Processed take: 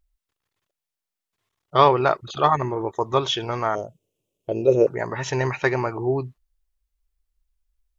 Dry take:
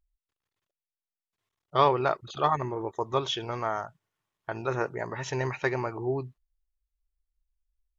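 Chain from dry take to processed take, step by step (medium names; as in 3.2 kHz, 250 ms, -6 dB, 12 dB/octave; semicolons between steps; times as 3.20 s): 3.75–4.87 s: FFT filter 150 Hz 0 dB, 540 Hz +10 dB, 800 Hz -13 dB, 1.7 kHz -30 dB, 2.7 kHz -1 dB, 4.5 kHz -9 dB, 6.6 kHz 0 dB; trim +6.5 dB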